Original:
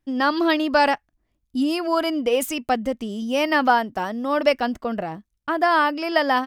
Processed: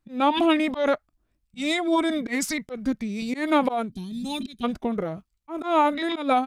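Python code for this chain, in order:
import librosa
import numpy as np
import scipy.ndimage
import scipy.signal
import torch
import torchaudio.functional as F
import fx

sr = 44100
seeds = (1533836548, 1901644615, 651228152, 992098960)

y = fx.auto_swell(x, sr, attack_ms=163.0)
y = fx.spec_box(y, sr, start_s=3.92, length_s=0.72, low_hz=430.0, high_hz=3100.0, gain_db=-27)
y = fx.formant_shift(y, sr, semitones=-5)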